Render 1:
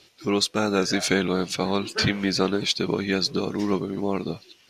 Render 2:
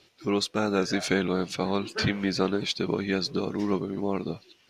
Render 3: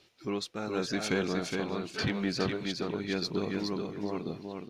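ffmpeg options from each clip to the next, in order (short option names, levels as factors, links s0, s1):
-af "highshelf=f=3800:g=-6.5,volume=0.75"
-filter_complex "[0:a]tremolo=f=0.9:d=0.53,asoftclip=type=tanh:threshold=0.188,asplit=2[s0][s1];[s1]aecho=0:1:417|834|1251:0.596|0.107|0.0193[s2];[s0][s2]amix=inputs=2:normalize=0,volume=0.668"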